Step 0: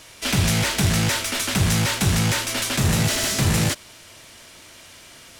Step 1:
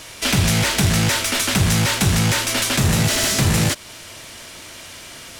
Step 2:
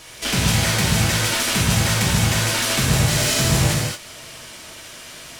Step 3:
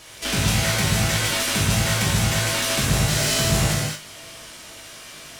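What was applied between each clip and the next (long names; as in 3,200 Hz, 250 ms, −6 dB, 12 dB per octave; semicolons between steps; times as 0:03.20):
downward compressor 1.5 to 1, threshold −30 dBFS, peak gain reduction 5.5 dB; level +7.5 dB
reverb whose tail is shaped and stops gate 250 ms flat, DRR −3.5 dB; level −5.5 dB
tuned comb filter 51 Hz, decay 0.32 s, harmonics all, mix 80%; level +3.5 dB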